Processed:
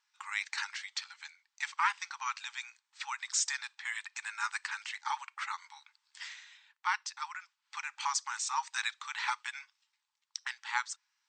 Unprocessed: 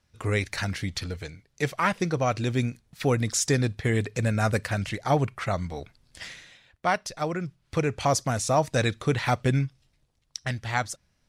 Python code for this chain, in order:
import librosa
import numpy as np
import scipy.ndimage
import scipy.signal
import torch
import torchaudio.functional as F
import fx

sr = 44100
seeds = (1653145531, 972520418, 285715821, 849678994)

y = fx.brickwall_bandpass(x, sr, low_hz=810.0, high_hz=8600.0)
y = y * librosa.db_to_amplitude(-4.0)